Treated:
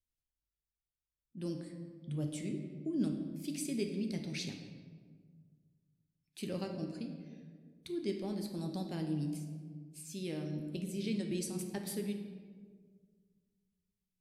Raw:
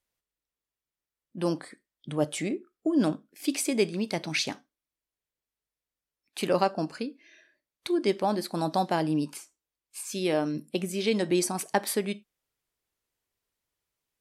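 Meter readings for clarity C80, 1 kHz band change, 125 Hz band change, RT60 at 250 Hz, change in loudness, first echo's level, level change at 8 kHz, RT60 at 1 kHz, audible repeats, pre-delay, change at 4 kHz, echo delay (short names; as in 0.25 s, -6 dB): 8.0 dB, -22.5 dB, -3.5 dB, 2.2 s, -10.5 dB, none, -11.5 dB, 1.5 s, none, 5 ms, -12.5 dB, none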